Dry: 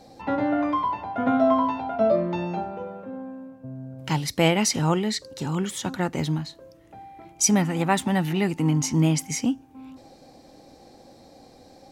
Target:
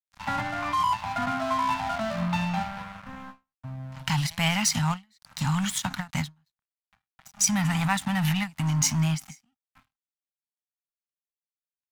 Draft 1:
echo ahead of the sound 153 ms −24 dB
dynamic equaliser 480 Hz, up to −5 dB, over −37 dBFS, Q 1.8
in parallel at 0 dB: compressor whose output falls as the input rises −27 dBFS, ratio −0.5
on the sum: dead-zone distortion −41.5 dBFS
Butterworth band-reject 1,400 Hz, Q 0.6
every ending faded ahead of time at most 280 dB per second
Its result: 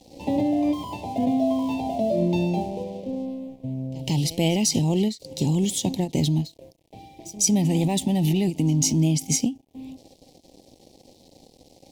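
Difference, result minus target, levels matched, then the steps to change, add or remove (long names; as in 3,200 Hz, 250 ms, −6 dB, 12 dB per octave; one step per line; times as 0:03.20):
500 Hz band +8.0 dB; dead-zone distortion: distortion −8 dB
change: dead-zone distortion −32 dBFS
change: Butterworth band-reject 400 Hz, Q 0.6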